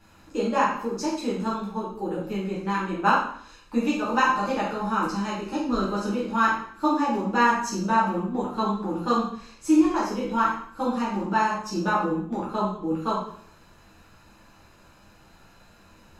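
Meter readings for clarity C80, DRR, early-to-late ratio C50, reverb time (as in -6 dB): 6.5 dB, -8.0 dB, 2.5 dB, 0.60 s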